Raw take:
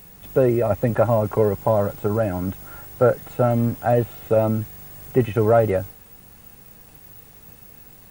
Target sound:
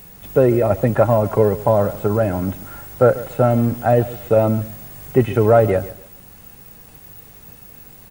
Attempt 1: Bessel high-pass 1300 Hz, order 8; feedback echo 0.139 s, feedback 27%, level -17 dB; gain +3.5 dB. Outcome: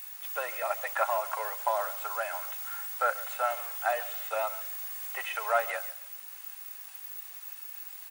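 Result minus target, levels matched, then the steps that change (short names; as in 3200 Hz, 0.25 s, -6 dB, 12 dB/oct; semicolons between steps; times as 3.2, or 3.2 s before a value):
1000 Hz band +8.0 dB
remove: Bessel high-pass 1300 Hz, order 8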